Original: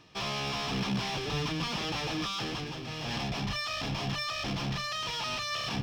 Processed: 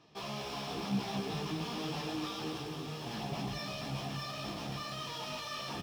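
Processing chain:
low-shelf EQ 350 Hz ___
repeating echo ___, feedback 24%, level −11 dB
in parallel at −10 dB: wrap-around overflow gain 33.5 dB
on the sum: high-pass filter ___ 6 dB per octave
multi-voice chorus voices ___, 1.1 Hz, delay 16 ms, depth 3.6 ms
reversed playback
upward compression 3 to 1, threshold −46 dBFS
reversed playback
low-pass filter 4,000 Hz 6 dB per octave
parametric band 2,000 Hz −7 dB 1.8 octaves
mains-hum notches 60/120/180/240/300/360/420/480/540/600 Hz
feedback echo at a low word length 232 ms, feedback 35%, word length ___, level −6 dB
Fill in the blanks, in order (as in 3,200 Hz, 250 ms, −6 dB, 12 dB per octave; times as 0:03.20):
+3.5 dB, 530 ms, 240 Hz, 4, 10 bits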